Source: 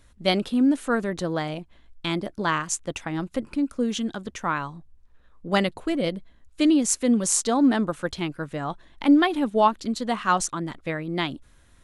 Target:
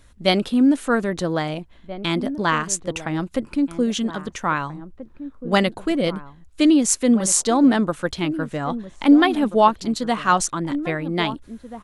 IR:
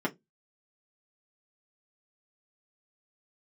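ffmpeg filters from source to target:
-filter_complex "[0:a]asplit=2[a][b];[b]adelay=1633,volume=-13dB,highshelf=f=4k:g=-36.7[c];[a][c]amix=inputs=2:normalize=0,volume=4dB"

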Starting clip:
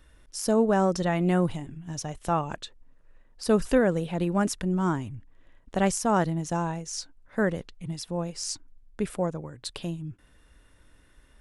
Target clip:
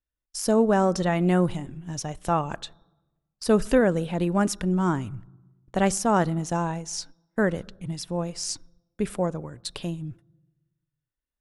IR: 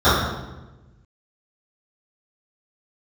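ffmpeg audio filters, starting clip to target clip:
-filter_complex "[0:a]agate=range=-37dB:threshold=-45dB:ratio=16:detection=peak,asplit=2[a][b];[1:a]atrim=start_sample=2205[c];[b][c]afir=irnorm=-1:irlink=0,volume=-50dB[d];[a][d]amix=inputs=2:normalize=0,volume=2dB"

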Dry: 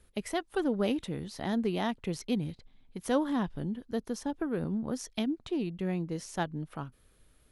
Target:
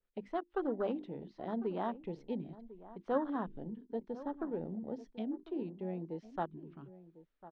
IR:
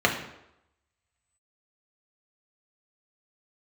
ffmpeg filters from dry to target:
-filter_complex "[0:a]bandreject=f=50:t=h:w=6,bandreject=f=100:t=h:w=6,bandreject=f=150:t=h:w=6,bandreject=f=200:t=h:w=6,bandreject=f=250:t=h:w=6,bandreject=f=300:t=h:w=6,bandreject=f=350:t=h:w=6,afwtdn=0.02,equalizer=f=81:t=o:w=2.3:g=-14.5,acrossover=split=480|4100[a][b][c];[c]acrusher=bits=3:mix=0:aa=0.000001[d];[a][b][d]amix=inputs=3:normalize=0,asplit=2[e][f];[f]adelay=1050,volume=-16dB,highshelf=f=4k:g=-23.6[g];[e][g]amix=inputs=2:normalize=0,adynamicequalizer=threshold=0.00316:dfrequency=1800:dqfactor=0.7:tfrequency=1800:tqfactor=0.7:attack=5:release=100:ratio=0.375:range=2:mode=boostabove:tftype=highshelf,volume=-2dB"

